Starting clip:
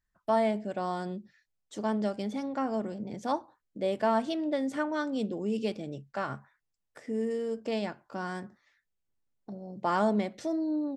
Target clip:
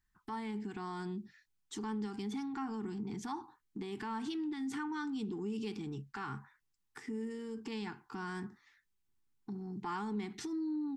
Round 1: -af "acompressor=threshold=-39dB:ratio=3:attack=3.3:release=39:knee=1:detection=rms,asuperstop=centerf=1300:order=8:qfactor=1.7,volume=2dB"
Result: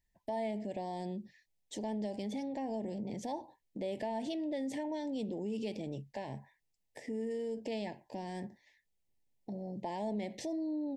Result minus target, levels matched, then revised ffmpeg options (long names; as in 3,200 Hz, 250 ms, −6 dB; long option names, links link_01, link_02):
500 Hz band +5.5 dB
-af "acompressor=threshold=-39dB:ratio=3:attack=3.3:release=39:knee=1:detection=rms,asuperstop=centerf=580:order=8:qfactor=1.7,volume=2dB"